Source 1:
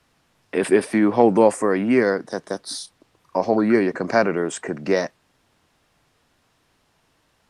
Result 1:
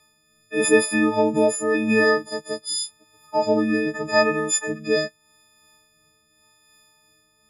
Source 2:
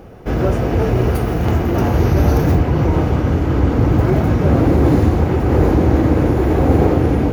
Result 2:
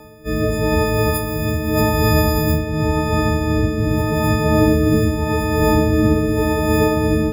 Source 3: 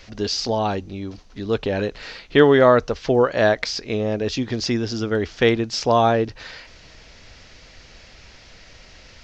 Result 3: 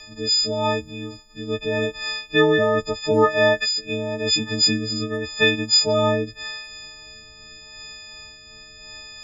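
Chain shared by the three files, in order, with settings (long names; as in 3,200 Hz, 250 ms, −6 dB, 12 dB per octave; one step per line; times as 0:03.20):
every partial snapped to a pitch grid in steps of 6 semitones
amplitude tremolo 2.8 Hz, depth 29%
rotating-speaker cabinet horn 0.85 Hz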